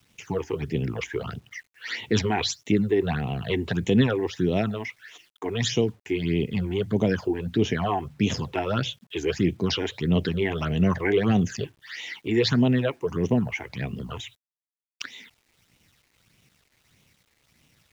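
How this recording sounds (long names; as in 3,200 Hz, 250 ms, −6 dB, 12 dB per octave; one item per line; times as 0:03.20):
phaser sweep stages 8, 1.6 Hz, lowest notch 160–1,500 Hz
a quantiser's noise floor 10 bits, dither none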